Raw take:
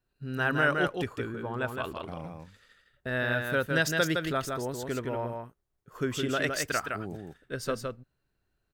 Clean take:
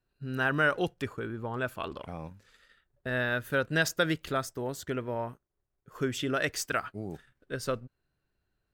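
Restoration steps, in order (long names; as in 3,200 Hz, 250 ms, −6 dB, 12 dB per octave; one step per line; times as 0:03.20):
echo removal 163 ms −4.5 dB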